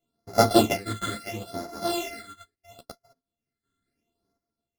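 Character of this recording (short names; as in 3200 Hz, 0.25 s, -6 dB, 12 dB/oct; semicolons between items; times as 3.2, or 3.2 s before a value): a buzz of ramps at a fixed pitch in blocks of 64 samples; phasing stages 8, 0.74 Hz, lowest notch 730–2900 Hz; chopped level 0.55 Hz, depth 60%, duty 40%; a shimmering, thickened sound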